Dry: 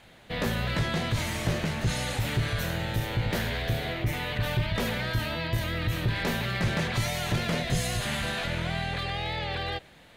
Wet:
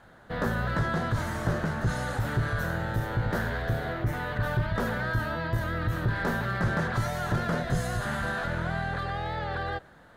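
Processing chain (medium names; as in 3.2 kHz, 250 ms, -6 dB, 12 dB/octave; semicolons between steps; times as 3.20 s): resonant high shelf 1.9 kHz -7.5 dB, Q 3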